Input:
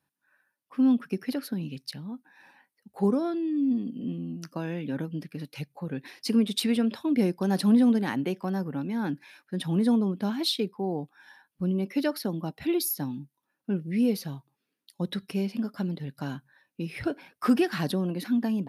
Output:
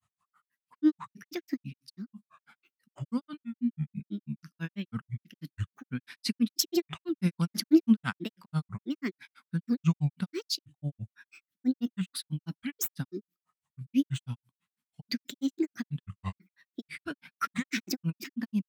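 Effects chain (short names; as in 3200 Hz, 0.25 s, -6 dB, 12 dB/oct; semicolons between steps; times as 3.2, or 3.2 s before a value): band shelf 540 Hz -15 dB; grains 0.1 s, grains 6.1/s, spray 13 ms, pitch spread up and down by 7 st; gain +4 dB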